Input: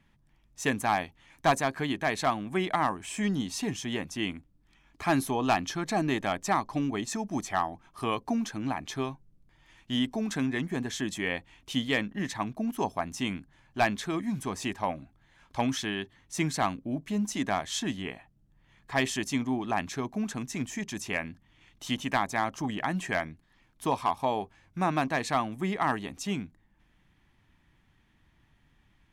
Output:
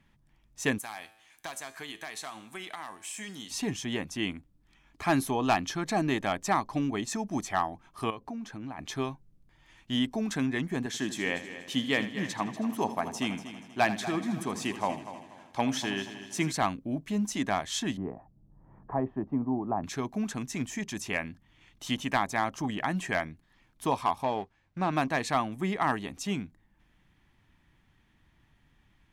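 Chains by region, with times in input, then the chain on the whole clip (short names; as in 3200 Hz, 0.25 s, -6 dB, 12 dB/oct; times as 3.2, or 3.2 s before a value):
0.78–3.51 tilt +3.5 dB/oct + compressor, threshold -28 dBFS + resonator 110 Hz, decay 0.83 s
8.1–8.79 compressor 2.5:1, threshold -39 dBFS + high shelf 3500 Hz -8 dB
10.86–16.52 HPF 130 Hz + multi-head echo 80 ms, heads first and third, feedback 51%, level -13.5 dB
17.97–19.84 LPF 1000 Hz 24 dB/oct + three-band squash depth 40%
24.23–24.93 G.711 law mismatch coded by A + hard clip -21 dBFS + air absorption 83 m
whole clip: dry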